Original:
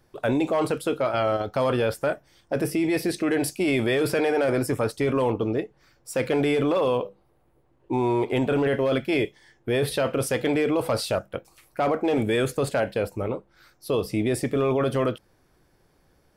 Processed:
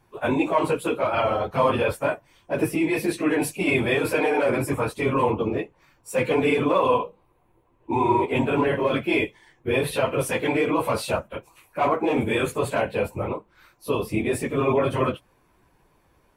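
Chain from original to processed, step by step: phase scrambler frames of 50 ms; thirty-one-band EQ 1000 Hz +10 dB, 2500 Hz +7 dB, 5000 Hz -8 dB

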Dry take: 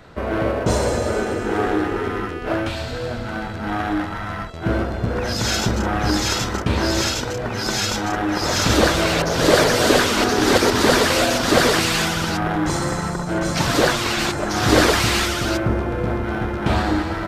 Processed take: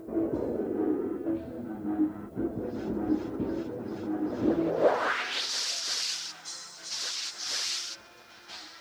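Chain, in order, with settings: reverse; upward compressor, threshold -23 dBFS; reverse; band-pass sweep 310 Hz -> 5300 Hz, 9.1–10.81; added noise blue -67 dBFS; plain phase-vocoder stretch 0.51×; pre-echo 0.174 s -17.5 dB

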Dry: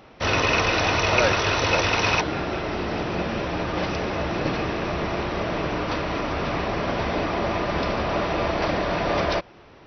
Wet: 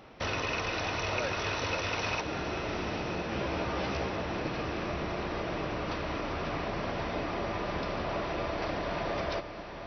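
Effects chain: compressor 2.5:1, threshold -30 dBFS, peak gain reduction 10.5 dB; 3.3–4.09 doubler 15 ms -2.5 dB; on a send: diffused feedback echo 0.909 s, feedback 46%, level -9.5 dB; on the sum: gain -3.5 dB

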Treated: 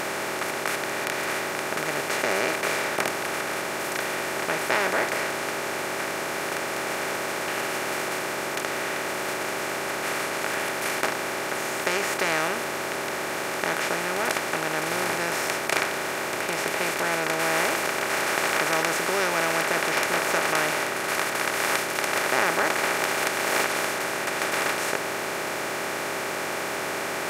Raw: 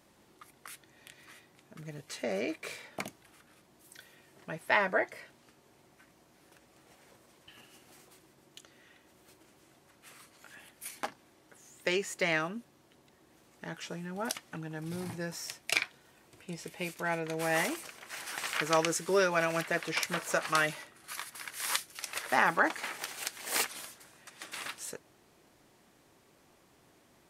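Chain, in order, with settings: per-bin compression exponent 0.2; gain -4 dB

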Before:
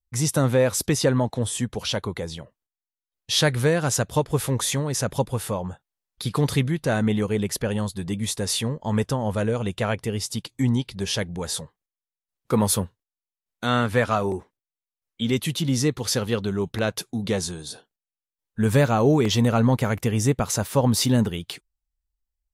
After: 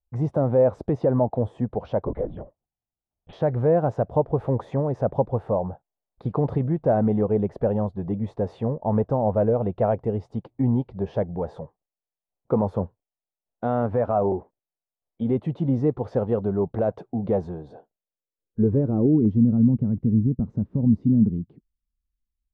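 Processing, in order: limiter -14 dBFS, peak gain reduction 7 dB; low-pass sweep 700 Hz -> 230 Hz, 17.8–19.45; 2.07–3.33 LPC vocoder at 8 kHz whisper

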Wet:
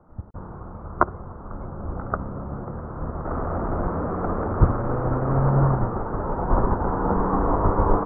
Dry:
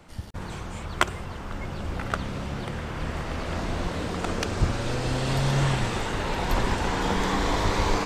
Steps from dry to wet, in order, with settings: 3.25–5.5 delta modulation 16 kbps, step -21.5 dBFS; elliptic low-pass 1300 Hz, stop band 60 dB; upward expander 1.5:1, over -39 dBFS; gain +8 dB

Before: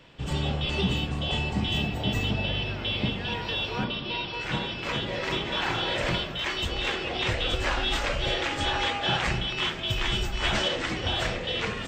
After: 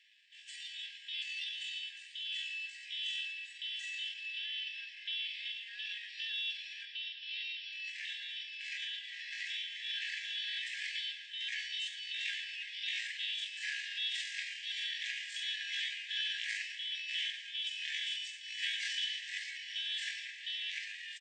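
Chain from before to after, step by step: tempo 0.56×; feedback echo 0.109 s, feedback 59%, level -14 dB; FFT band-pass 1600–11000 Hz; gain -8 dB

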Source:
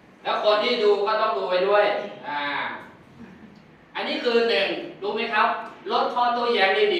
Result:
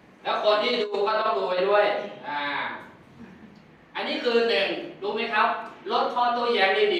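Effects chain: 0.7–1.61 negative-ratio compressor -22 dBFS, ratio -0.5; gain -1.5 dB

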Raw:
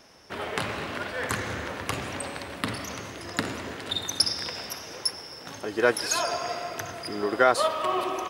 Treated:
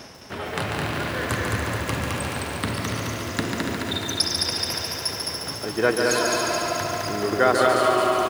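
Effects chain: HPF 70 Hz; low shelf 150 Hz +11 dB; reverse; upward compressor, threshold -27 dBFS; reverse; feedback echo 0.213 s, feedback 51%, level -3.5 dB; lo-fi delay 0.143 s, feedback 80%, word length 7-bit, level -5.5 dB

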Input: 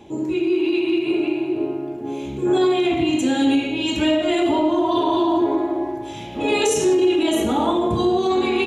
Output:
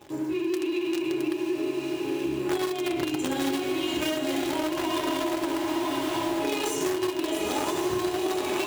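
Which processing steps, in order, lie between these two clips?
in parallel at -7 dB: companded quantiser 2-bit; on the sum: notches 50/100/150/200/250/300/350 Hz; notch comb 230 Hz; on a send: diffused feedback echo 0.95 s, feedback 56%, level -4 dB; on the sum: compressor, threshold -17 dBFS, peak gain reduction 10.5 dB; low shelf 64 Hz -10.5 dB; gain -6.5 dB

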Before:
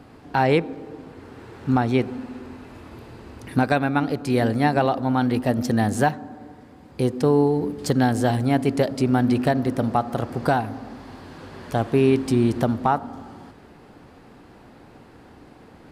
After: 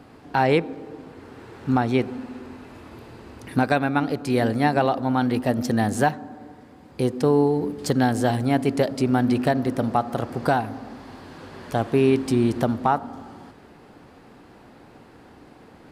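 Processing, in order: low shelf 120 Hz -4.5 dB

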